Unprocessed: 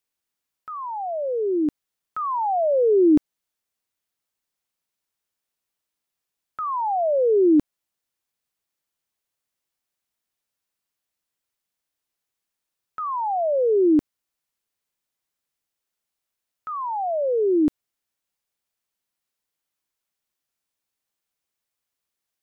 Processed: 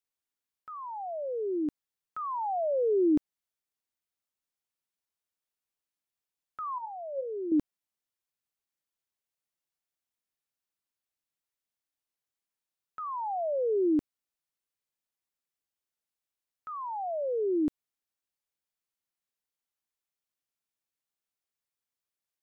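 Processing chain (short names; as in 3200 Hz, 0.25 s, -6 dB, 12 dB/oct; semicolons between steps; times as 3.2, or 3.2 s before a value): 6.78–7.52 resonator 180 Hz, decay 0.18 s, harmonics odd, mix 70%; gain -8.5 dB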